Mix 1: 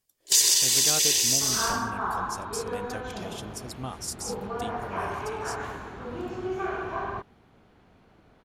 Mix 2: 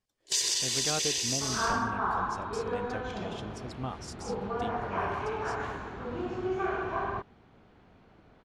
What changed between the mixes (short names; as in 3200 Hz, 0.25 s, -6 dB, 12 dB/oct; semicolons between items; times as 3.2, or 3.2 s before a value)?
speech: add high shelf 5700 Hz -11.5 dB; first sound -4.0 dB; master: add air absorption 66 m